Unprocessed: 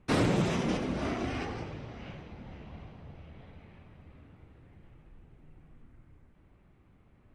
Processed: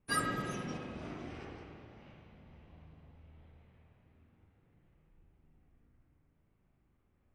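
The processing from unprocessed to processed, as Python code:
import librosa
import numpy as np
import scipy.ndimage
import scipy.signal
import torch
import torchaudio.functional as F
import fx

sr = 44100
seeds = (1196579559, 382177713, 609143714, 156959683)

y = fx.noise_reduce_blind(x, sr, reduce_db=29)
y = fx.rev_spring(y, sr, rt60_s=1.7, pass_ms=(38, 51), chirp_ms=20, drr_db=1.5)
y = F.gain(torch.from_numpy(y), 14.5).numpy()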